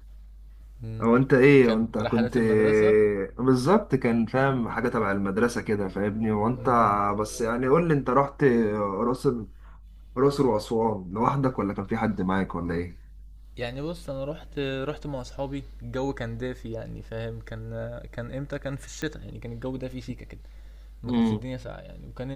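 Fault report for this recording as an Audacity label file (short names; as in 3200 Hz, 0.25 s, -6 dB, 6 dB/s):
19.020000	19.020000	pop -19 dBFS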